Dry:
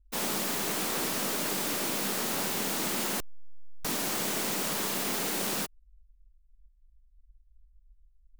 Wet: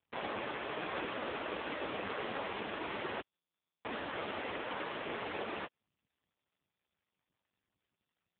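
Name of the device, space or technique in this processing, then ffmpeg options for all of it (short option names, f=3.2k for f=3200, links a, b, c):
telephone: -af "highpass=320,lowpass=3k,volume=1.5dB" -ar 8000 -c:a libopencore_amrnb -b:a 5150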